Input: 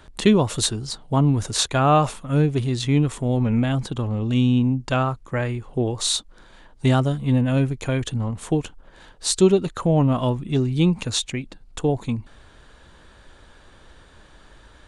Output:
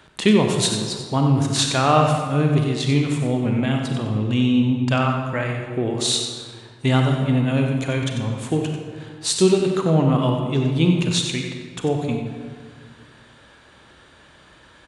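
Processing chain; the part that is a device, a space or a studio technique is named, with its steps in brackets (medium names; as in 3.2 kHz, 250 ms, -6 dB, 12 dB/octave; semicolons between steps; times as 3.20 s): PA in a hall (high-pass 100 Hz; peaking EQ 2.5 kHz +4 dB 1.3 oct; delay 93 ms -9 dB; reverberation RT60 1.8 s, pre-delay 31 ms, DRR 3.5 dB); trim -1 dB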